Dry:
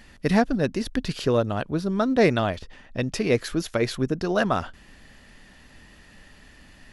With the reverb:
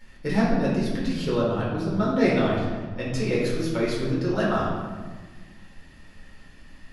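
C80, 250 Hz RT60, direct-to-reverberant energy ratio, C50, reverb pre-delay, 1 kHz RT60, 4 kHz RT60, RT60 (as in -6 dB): 3.0 dB, 1.9 s, -7.0 dB, 0.5 dB, 5 ms, 1.3 s, 0.90 s, 1.4 s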